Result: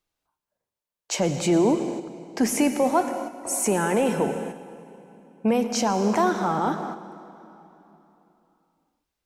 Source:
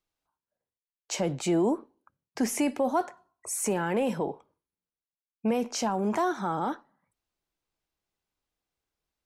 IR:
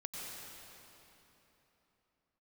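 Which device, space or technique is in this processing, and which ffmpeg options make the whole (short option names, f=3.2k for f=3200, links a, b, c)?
keyed gated reverb: -filter_complex "[0:a]asplit=3[a][b][c];[1:a]atrim=start_sample=2205[d];[b][d]afir=irnorm=-1:irlink=0[e];[c]apad=whole_len=408265[f];[e][f]sidechaingate=range=-6dB:threshold=-57dB:ratio=16:detection=peak,volume=-2.5dB[g];[a][g]amix=inputs=2:normalize=0,volume=2dB"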